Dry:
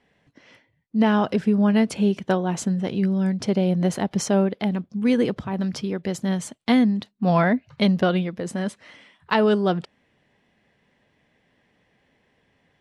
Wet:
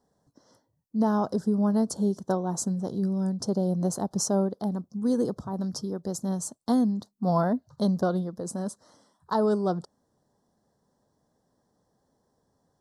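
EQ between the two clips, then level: Chebyshev band-stop 1.1–5.3 kHz, order 2; treble shelf 4.9 kHz +9 dB; -4.5 dB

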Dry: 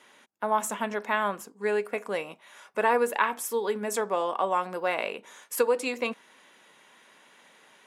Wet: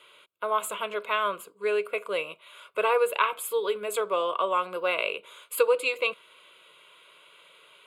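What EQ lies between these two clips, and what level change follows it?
peaking EQ 3.2 kHz +5.5 dB 2.3 oct; static phaser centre 1.2 kHz, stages 8; +1.5 dB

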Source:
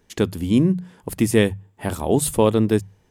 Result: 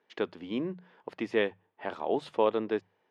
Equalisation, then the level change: band-pass 490–6600 Hz; distance through air 290 m; -4.0 dB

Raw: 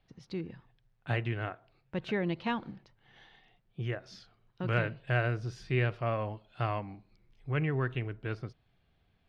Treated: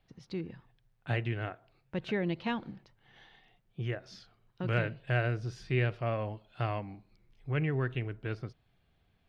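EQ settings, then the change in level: dynamic bell 1.1 kHz, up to -4 dB, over -48 dBFS, Q 1.8; 0.0 dB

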